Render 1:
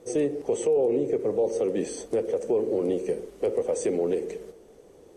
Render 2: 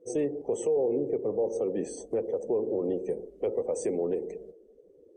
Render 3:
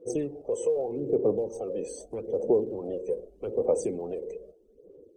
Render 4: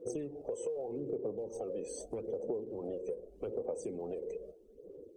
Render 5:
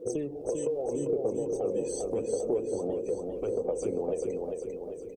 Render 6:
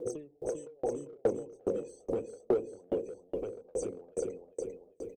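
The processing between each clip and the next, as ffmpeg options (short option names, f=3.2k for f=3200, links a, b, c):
-af "afftdn=nr=22:nf=-46,adynamicequalizer=threshold=0.00251:dfrequency=3000:dqfactor=1.1:tfrequency=3000:tqfactor=1.1:attack=5:release=100:ratio=0.375:range=3:mode=cutabove:tftype=bell,volume=-3.5dB"
-af "aphaser=in_gain=1:out_gain=1:delay=2:decay=0.65:speed=0.81:type=sinusoidal,equalizer=f=1.9k:w=4:g=-10,volume=-2.5dB"
-af "acompressor=threshold=-38dB:ratio=4,volume=1dB"
-af "aecho=1:1:397|794|1191|1588|1985|2382:0.631|0.315|0.158|0.0789|0.0394|0.0197,volume=6.5dB"
-filter_complex "[0:a]asplit=2[a][b];[b]asoftclip=type=hard:threshold=-26dB,volume=-3dB[c];[a][c]amix=inputs=2:normalize=0,aeval=exprs='val(0)*pow(10,-37*if(lt(mod(2.4*n/s,1),2*abs(2.4)/1000),1-mod(2.4*n/s,1)/(2*abs(2.4)/1000),(mod(2.4*n/s,1)-2*abs(2.4)/1000)/(1-2*abs(2.4)/1000))/20)':c=same"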